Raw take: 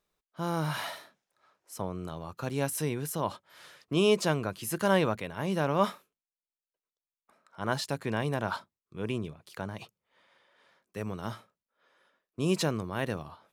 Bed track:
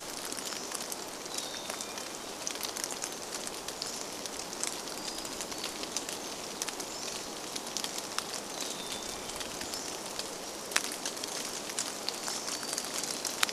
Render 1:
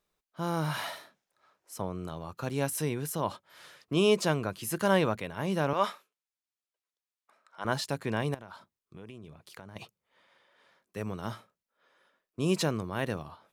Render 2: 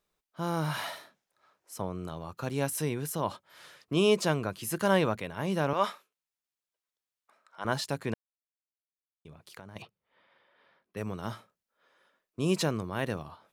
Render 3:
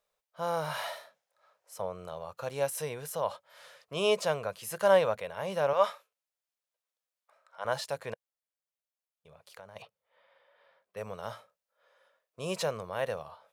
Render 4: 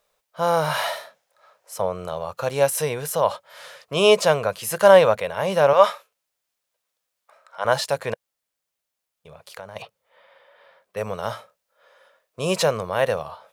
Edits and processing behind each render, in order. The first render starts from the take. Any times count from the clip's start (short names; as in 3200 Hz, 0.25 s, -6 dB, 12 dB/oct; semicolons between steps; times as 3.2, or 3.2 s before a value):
5.73–7.65 weighting filter A; 8.34–9.76 compressor 8:1, threshold -42 dBFS
8.14–9.25 mute; 9.82–10.97 running mean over 6 samples
resonant low shelf 410 Hz -8.5 dB, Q 3; harmonic-percussive split percussive -4 dB
gain +11.5 dB; limiter -1 dBFS, peak gain reduction 1.5 dB